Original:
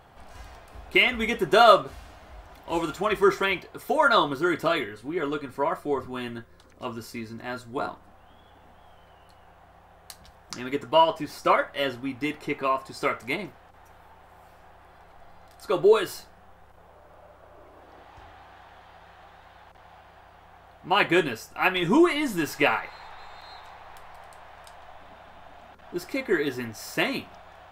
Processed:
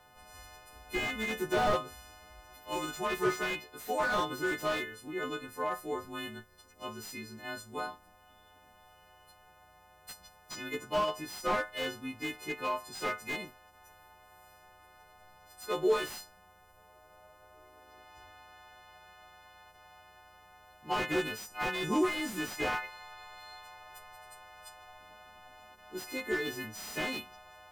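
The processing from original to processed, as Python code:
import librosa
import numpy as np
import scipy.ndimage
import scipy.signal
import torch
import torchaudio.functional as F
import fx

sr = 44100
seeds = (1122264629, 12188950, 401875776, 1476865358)

y = fx.freq_snap(x, sr, grid_st=3)
y = fx.slew_limit(y, sr, full_power_hz=130.0)
y = y * librosa.db_to_amplitude(-8.5)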